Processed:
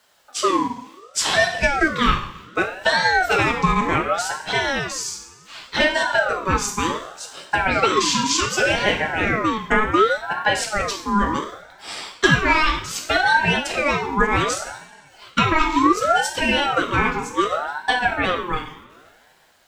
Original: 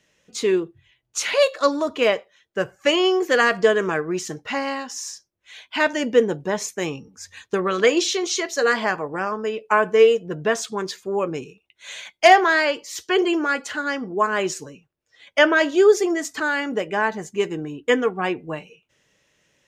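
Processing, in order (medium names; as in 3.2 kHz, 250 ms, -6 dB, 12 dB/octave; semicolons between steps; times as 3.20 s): compression 10:1, threshold -18 dBFS, peak gain reduction 11.5 dB; bit crusher 11-bit; two-slope reverb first 0.6 s, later 2.8 s, from -21 dB, DRR 1.5 dB; ring modulator with a swept carrier 930 Hz, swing 35%, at 0.67 Hz; trim +5.5 dB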